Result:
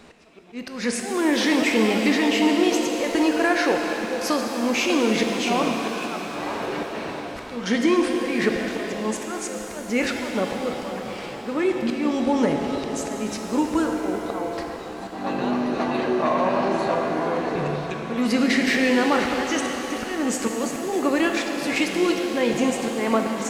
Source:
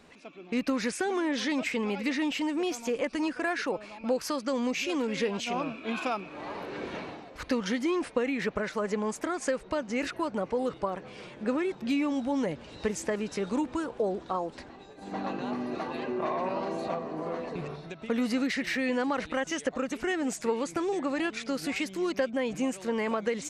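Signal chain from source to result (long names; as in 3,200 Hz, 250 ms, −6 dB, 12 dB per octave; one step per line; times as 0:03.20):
volume swells 254 ms
reverb with rising layers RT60 3.8 s, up +7 semitones, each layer −8 dB, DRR 2.5 dB
level +8 dB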